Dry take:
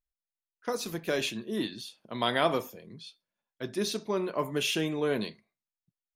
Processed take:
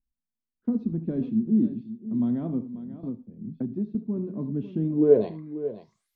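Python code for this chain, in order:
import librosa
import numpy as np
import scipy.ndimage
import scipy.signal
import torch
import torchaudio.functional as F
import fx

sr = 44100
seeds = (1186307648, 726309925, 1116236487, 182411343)

y = fx.graphic_eq(x, sr, hz=(250, 500, 4000), db=(-5, -5, 9))
y = fx.rider(y, sr, range_db=10, speed_s=2.0)
y = fx.filter_sweep_lowpass(y, sr, from_hz=240.0, to_hz=13000.0, start_s=4.94, end_s=6.14, q=6.4)
y = fx.echo_multitap(y, sr, ms=(74, 539), db=(-15.0, -13.0))
y = fx.band_squash(y, sr, depth_pct=100, at=(3.03, 3.95))
y = y * 10.0 ** (5.0 / 20.0)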